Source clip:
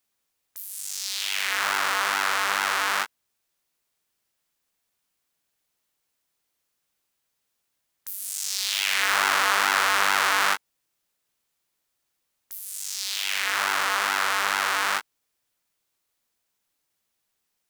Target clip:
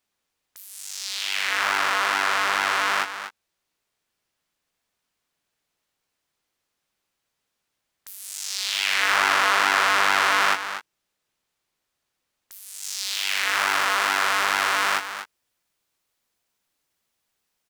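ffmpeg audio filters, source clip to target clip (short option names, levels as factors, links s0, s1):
-af "asetnsamples=n=441:p=0,asendcmd='12.83 highshelf g -4.5',highshelf=f=7900:g=-11,aecho=1:1:242:0.299,volume=1.33"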